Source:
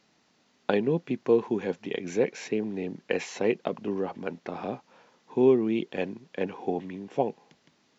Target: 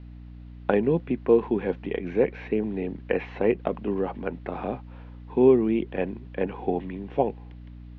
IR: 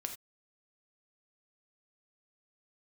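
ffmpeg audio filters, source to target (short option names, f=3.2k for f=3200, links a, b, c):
-filter_complex "[0:a]aeval=exprs='val(0)+0.00631*(sin(2*PI*60*n/s)+sin(2*PI*2*60*n/s)/2+sin(2*PI*3*60*n/s)/3+sin(2*PI*4*60*n/s)/4+sin(2*PI*5*60*n/s)/5)':c=same,acrossover=split=2500[a][b];[b]acompressor=threshold=-54dB:ratio=4:attack=1:release=60[c];[a][c]amix=inputs=2:normalize=0,lowpass=f=3.5k:w=0.5412,lowpass=f=3.5k:w=1.3066,volume=3dB"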